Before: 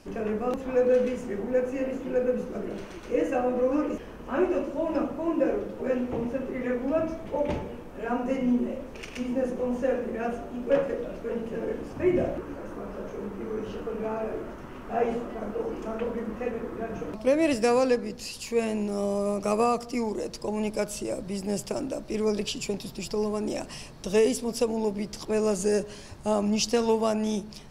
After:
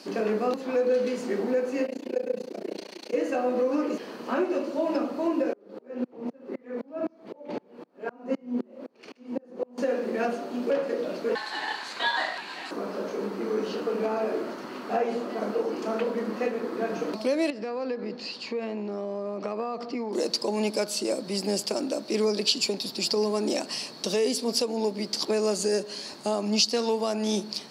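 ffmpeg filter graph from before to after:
ffmpeg -i in.wav -filter_complex "[0:a]asettb=1/sr,asplit=3[link_01][link_02][link_03];[link_01]atrim=end=1.864[link_04];[link_02]atrim=start=1.86:end=3.14,asetpts=PTS-STARTPTS,afade=type=in:duration=0.004:curve=qsin,afade=type=out:start_time=1.276:duration=0.004:curve=qsin,highpass=240,equalizer=frequency=1300:width_type=o:width=0.55:gain=-11.5,tremolo=f=29:d=1[link_05];[link_03]atrim=start=3.136[link_06];[link_04][link_05]acrossfade=duration=0.004:curve1=hsin:curve2=qsin[link_07];[link_07][link_06]acrossfade=duration=0.004:curve1=qsin:curve2=hsin,asettb=1/sr,asplit=3[link_08][link_09][link_10];[link_08]atrim=end=5.534[link_11];[link_09]atrim=start=5.53:end=9.78,asetpts=PTS-STARTPTS,afade=type=in:duration=0.004:curve=qsin,afade=type=out:start_time=4.246:duration=0.004:curve=qsin,highshelf=frequency=2400:gain=-11.5,aeval=exprs='val(0)*pow(10,-36*if(lt(mod(-3.9*n/s,1),2*abs(-3.9)/1000),1-mod(-3.9*n/s,1)/(2*abs(-3.9)/1000),(mod(-3.9*n/s,1)-2*abs(-3.9)/1000)/(1-2*abs(-3.9)/1000))/20)':channel_layout=same[link_12];[link_10]atrim=start=9.776[link_13];[link_11][link_12]acrossfade=duration=0.004:curve1=hsin:curve2=qsin[link_14];[link_14][link_13]acrossfade=duration=0.004:curve1=qsin:curve2=hsin,asettb=1/sr,asplit=3[link_15][link_16][link_17];[link_15]atrim=end=11.354[link_18];[link_16]atrim=start=11.35:end=12.71,asetpts=PTS-STARTPTS,afade=type=in:duration=0.004:curve=qsin,afade=type=out:start_time=1.356:duration=0.004:curve=qsin,tiltshelf=frequency=760:gain=-8.5,aeval=exprs='val(0)*sin(2*PI*1300*n/s)':channel_layout=same,lowpass=9500[link_19];[link_17]atrim=start=12.706[link_20];[link_18][link_19]acrossfade=duration=0.004:curve1=hsin:curve2=qsin[link_21];[link_21][link_20]acrossfade=duration=0.004:curve1=qsin:curve2=hsin,asettb=1/sr,asplit=3[link_22][link_23][link_24];[link_22]atrim=end=17.504[link_25];[link_23]atrim=start=17.5:end=20.13,asetpts=PTS-STARTPTS,afade=type=in:duration=0.004:curve=qsin,afade=type=out:start_time=2.626:duration=0.004:curve=qsin,lowpass=2300,acompressor=threshold=-31dB:ratio=12:attack=3.2:release=140:knee=1:detection=peak[link_26];[link_24]atrim=start=20.126[link_27];[link_25][link_26]acrossfade=duration=0.004:curve1=hsin:curve2=qsin[link_28];[link_28][link_27]acrossfade=duration=0.004:curve1=qsin:curve2=hsin,highpass=frequency=210:width=0.5412,highpass=frequency=210:width=1.3066,alimiter=limit=-22dB:level=0:latency=1:release=368,equalizer=frequency=4400:width=3.3:gain=14.5,volume=5dB" out.wav

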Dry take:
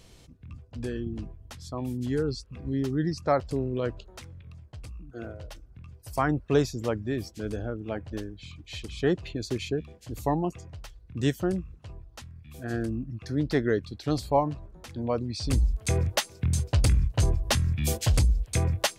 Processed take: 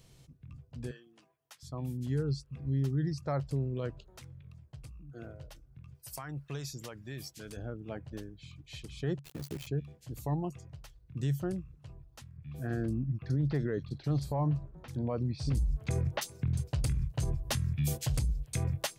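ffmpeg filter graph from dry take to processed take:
ffmpeg -i in.wav -filter_complex "[0:a]asettb=1/sr,asplit=3[link_01][link_02][link_03];[link_01]atrim=end=0.914[link_04];[link_02]atrim=start=0.91:end=1.63,asetpts=PTS-STARTPTS,afade=type=in:duration=0.004:curve=qsin,afade=type=out:start_time=0.716:duration=0.004:curve=qsin,highpass=830,bandreject=frequency=4100:width=24[link_05];[link_03]atrim=start=1.626[link_06];[link_04][link_05]acrossfade=duration=0.004:curve1=hsin:curve2=qsin[link_07];[link_07][link_06]acrossfade=duration=0.004:curve1=qsin:curve2=hsin,asettb=1/sr,asplit=3[link_08][link_09][link_10];[link_08]atrim=end=5.954[link_11];[link_09]atrim=start=5.95:end=7.57,asetpts=PTS-STARTPTS,afade=type=in:duration=0.004:curve=qsin,afade=type=out:start_time=1.616:duration=0.004:curve=qsin,tiltshelf=frequency=850:gain=-7,acompressor=threshold=-31dB:ratio=5:attack=3.2:release=140:knee=1:detection=peak[link_12];[link_10]atrim=start=7.566[link_13];[link_11][link_12]acrossfade=duration=0.004:curve1=hsin:curve2=qsin[link_14];[link_14][link_13]acrossfade=duration=0.004:curve1=qsin:curve2=hsin,asettb=1/sr,asplit=3[link_15][link_16][link_17];[link_15]atrim=end=9.194[link_18];[link_16]atrim=start=9.19:end=9.67,asetpts=PTS-STARTPTS,afade=type=in:duration=0.004:curve=qsin,afade=type=out:start_time=0.476:duration=0.004:curve=qsin,aeval=exprs='val(0)*gte(abs(val(0)),0.0178)':channel_layout=same,aeval=exprs='val(0)*sin(2*PI*35*n/s)':channel_layout=same[link_19];[link_17]atrim=start=9.666[link_20];[link_18][link_19]acrossfade=duration=0.004:curve1=hsin:curve2=qsin[link_21];[link_21][link_20]acrossfade=duration=0.004:curve1=qsin:curve2=hsin,asettb=1/sr,asplit=3[link_22][link_23][link_24];[link_22]atrim=end=12.374[link_25];[link_23]atrim=start=12.37:end=16.58,asetpts=PTS-STARTPTS,afade=type=in:duration=0.004:curve=qsin,afade=type=out:start_time=4.206:duration=0.004:curve=qsin,highshelf=frequency=3200:gain=-7.5,acontrast=29,acrossover=split=4100[link_26][link_27];[link_27]adelay=40[link_28];[link_26][link_28]amix=inputs=2:normalize=0,atrim=end_sample=185661[link_29];[link_24]atrim=start=16.576[link_30];[link_25][link_29]acrossfade=duration=0.004:curve1=hsin:curve2=qsin[link_31];[link_31][link_30]acrossfade=duration=0.004:curve1=qsin:curve2=hsin,equalizer=frequency=140:width_type=o:width=0.28:gain=15,alimiter=limit=-14.5dB:level=0:latency=1:release=52,highshelf=frequency=11000:gain=9,volume=-8.5dB" out.wav

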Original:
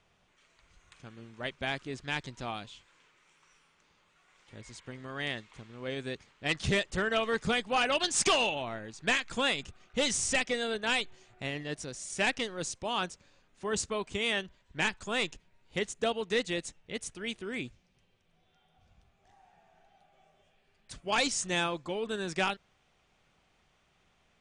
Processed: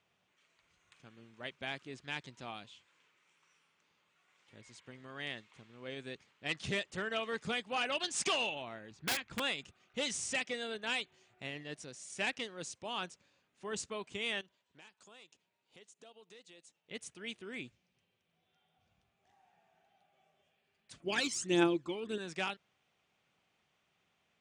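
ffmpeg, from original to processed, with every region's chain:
ffmpeg -i in.wav -filter_complex "[0:a]asettb=1/sr,asplit=3[link_01][link_02][link_03];[link_01]atrim=end=8.914[link_04];[link_02]atrim=start=8.91:end=9.4,asetpts=PTS-STARTPTS,afade=type=in:duration=0.004:curve=qsin,afade=type=out:start_time=0.486:duration=0.004:curve=qsin,aemphasis=mode=reproduction:type=bsi,aeval=exprs='(mod(10.6*val(0)+1,2)-1)/10.6':channel_layout=same[link_05];[link_03]atrim=start=9.396[link_06];[link_04][link_05]acrossfade=duration=0.004:curve1=hsin:curve2=qsin[link_07];[link_07][link_06]acrossfade=duration=0.004:curve1=qsin:curve2=hsin,asettb=1/sr,asplit=3[link_08][link_09][link_10];[link_08]atrim=end=14.414[link_11];[link_09]atrim=start=14.41:end=16.91,asetpts=PTS-STARTPTS,afade=type=in:duration=0.004:curve=qsin,afade=type=out:start_time=2.496:duration=0.004:curve=qsin,highpass=frequency=410:poles=1,acompressor=threshold=-51dB:ratio=3:attack=3.2:release=140:knee=1:detection=peak,equalizer=frequency=1900:width_type=o:width=0.9:gain=-5.5[link_12];[link_10]atrim=start=16.906[link_13];[link_11][link_12]acrossfade=duration=0.004:curve1=hsin:curve2=qsin[link_14];[link_14][link_13]acrossfade=duration=0.004:curve1=qsin:curve2=hsin,asettb=1/sr,asplit=3[link_15][link_16][link_17];[link_15]atrim=end=21.004[link_18];[link_16]atrim=start=21:end=22.18,asetpts=PTS-STARTPTS,afade=type=in:duration=0.004:curve=qsin,afade=type=out:start_time=1.176:duration=0.004:curve=qsin,aphaser=in_gain=1:out_gain=1:delay=1:decay=0.63:speed=1.6:type=triangular,equalizer=frequency=340:width=3.4:gain=13[link_19];[link_17]atrim=start=22.176[link_20];[link_18][link_19]acrossfade=duration=0.004:curve1=hsin:curve2=qsin[link_21];[link_21][link_20]acrossfade=duration=0.004:curve1=qsin:curve2=hsin,highpass=110,equalizer=frequency=2700:width=1.5:gain=3,volume=-8dB" out.wav

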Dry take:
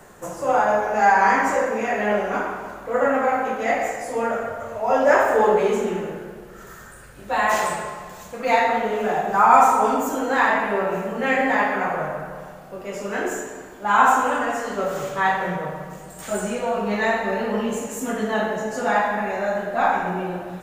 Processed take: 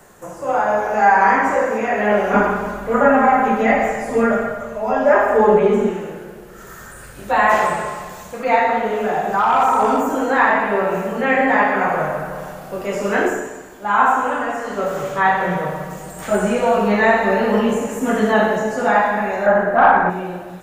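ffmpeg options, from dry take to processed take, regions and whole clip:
ffmpeg -i in.wav -filter_complex "[0:a]asettb=1/sr,asplit=3[link_01][link_02][link_03];[link_01]atrim=end=2.334[link_04];[link_02]atrim=start=2.33:end=5.91,asetpts=PTS-STARTPTS,afade=type=in:duration=0.004:curve=qsin,afade=type=out:start_time=3.576:duration=0.004:curve=qsin,bass=frequency=250:gain=7,treble=frequency=4000:gain=-4,aecho=1:1:4.9:0.8,atrim=end_sample=157878[link_05];[link_03]atrim=start=5.906[link_06];[link_04][link_05]acrossfade=duration=0.004:curve1=hsin:curve2=qsin[link_07];[link_07][link_06]acrossfade=duration=0.004:curve1=qsin:curve2=hsin,asettb=1/sr,asplit=3[link_08][link_09][link_10];[link_08]atrim=end=8.904[link_11];[link_09]atrim=start=8.9:end=10.16,asetpts=PTS-STARTPTS,afade=type=in:duration=0.004:curve=qsin,afade=type=out:start_time=1.256:duration=0.004:curve=qsin,acompressor=threshold=-18dB:ratio=2:attack=3.2:release=140:knee=1:detection=peak,asoftclip=type=hard:threshold=-14.5dB[link_12];[link_10]atrim=start=10.156[link_13];[link_11][link_12]acrossfade=duration=0.004:curve1=hsin:curve2=qsin[link_14];[link_14][link_13]acrossfade=duration=0.004:curve1=qsin:curve2=hsin,asettb=1/sr,asplit=3[link_15][link_16][link_17];[link_15]atrim=end=19.464[link_18];[link_16]atrim=start=19.46:end=20.1,asetpts=PTS-STARTPTS,afade=type=in:duration=0.004:curve=qsin,afade=type=out:start_time=0.636:duration=0.004:curve=qsin,highshelf=frequency=2300:width_type=q:width=1.5:gain=-12,acontrast=75[link_19];[link_17]atrim=start=20.096[link_20];[link_18][link_19]acrossfade=duration=0.004:curve1=hsin:curve2=qsin[link_21];[link_21][link_20]acrossfade=duration=0.004:curve1=qsin:curve2=hsin,acrossover=split=2700[link_22][link_23];[link_23]acompressor=threshold=-47dB:ratio=4:attack=1:release=60[link_24];[link_22][link_24]amix=inputs=2:normalize=0,highshelf=frequency=5400:gain=4.5,dynaudnorm=framelen=470:gausssize=3:maxgain=11.5dB,volume=-1dB" out.wav

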